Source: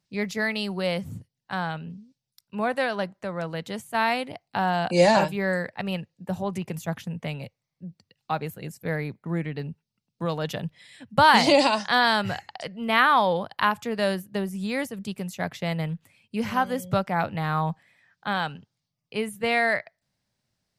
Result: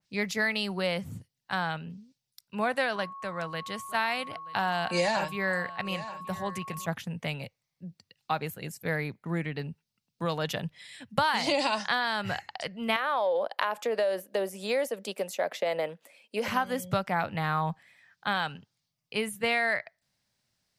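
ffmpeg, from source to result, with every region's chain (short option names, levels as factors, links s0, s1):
-filter_complex "[0:a]asettb=1/sr,asplit=3[s0][s1][s2];[s0]atrim=end=2.964[s3];[s1]atrim=start=2.96:end=6.86,asetpts=PTS-STARTPTS,afade=t=in:d=0.004:c=qsin,afade=t=out:st=3.896:d=0.004:c=qsin,equalizer=f=300:w=0.38:g=-4,aeval=exprs='val(0)+0.01*sin(2*PI*1100*n/s)':c=same,aecho=1:1:928:0.106,atrim=end_sample=171990[s4];[s2]atrim=start=6.856[s5];[s3][s4]acrossfade=d=0.004:c1=hsin:c2=qsin[s6];[s6][s5]acrossfade=d=0.004:c1=qsin:c2=hsin,asettb=1/sr,asplit=3[s7][s8][s9];[s7]atrim=end=12.964[s10];[s8]atrim=start=12.96:end=16.48,asetpts=PTS-STARTPTS,afade=t=in:d=0.004:c=qsin,afade=t=out:st=3.516:d=0.004:c=qsin,highpass=f=260:w=0.5412,highpass=f=260:w=1.3066,equalizer=f=560:w=1.9:g=14.5,acompressor=threshold=0.0794:ratio=4:attack=3.2:release=140:knee=1:detection=peak[s11];[s9]atrim=start=16.476[s12];[s10][s11]acrossfade=d=0.004:c1=hsin:c2=qsin[s13];[s13][s12]acrossfade=d=0.004:c1=qsin:c2=hsin,tiltshelf=f=970:g=-3.5,acompressor=threshold=0.0794:ratio=12,adynamicequalizer=threshold=0.00631:dfrequency=2900:dqfactor=0.7:tfrequency=2900:tqfactor=0.7:attack=5:release=100:ratio=0.375:range=2.5:mode=cutabove:tftype=highshelf"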